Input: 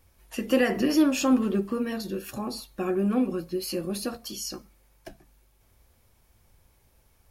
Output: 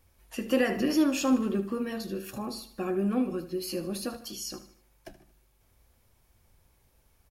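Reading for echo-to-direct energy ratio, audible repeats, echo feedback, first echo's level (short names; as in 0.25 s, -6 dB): -13.0 dB, 3, 43%, -14.0 dB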